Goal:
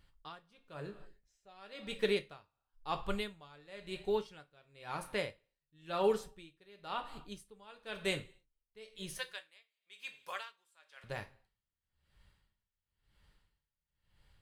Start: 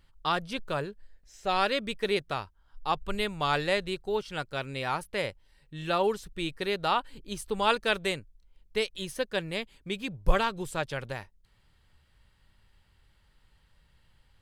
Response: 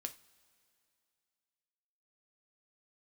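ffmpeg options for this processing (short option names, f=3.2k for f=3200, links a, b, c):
-filter_complex "[0:a]asettb=1/sr,asplit=3[a][b][c];[a]atrim=end=9.184[d];[b]atrim=start=9.18:end=11.04,asetpts=PTS-STARTPTS,afade=t=in:d=0.004:c=qsin,afade=t=out:st=1.856:d=0.004:c=qsin,highpass=1.2k[e];[c]atrim=start=11.036[f];[d][e]acrossfade=d=0.004:c1=hsin:c2=qsin[g];[g][f]acrossfade=d=0.004:c1=qsin:c2=hsin[h];[1:a]atrim=start_sample=2205,afade=t=out:st=0.35:d=0.01,atrim=end_sample=15876[i];[h][i]afir=irnorm=-1:irlink=0,aeval=exprs='val(0)*pow(10,-28*(0.5-0.5*cos(2*PI*0.98*n/s))/20)':c=same"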